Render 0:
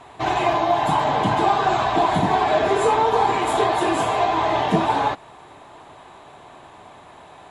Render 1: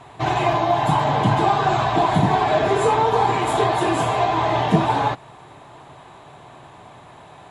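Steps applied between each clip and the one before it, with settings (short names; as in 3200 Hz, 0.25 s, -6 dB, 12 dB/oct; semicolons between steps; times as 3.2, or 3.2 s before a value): bell 130 Hz +9.5 dB 0.74 oct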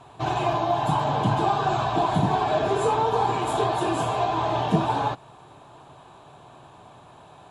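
bell 2000 Hz -12 dB 0.25 oct; gain -4.5 dB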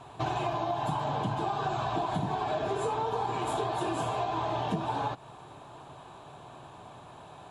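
compressor, threshold -28 dBFS, peak gain reduction 12.5 dB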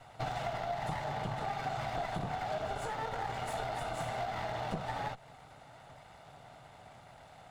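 minimum comb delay 1.4 ms; gain -4.5 dB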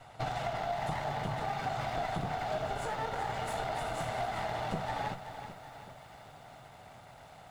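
lo-fi delay 0.38 s, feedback 55%, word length 10-bit, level -10 dB; gain +1.5 dB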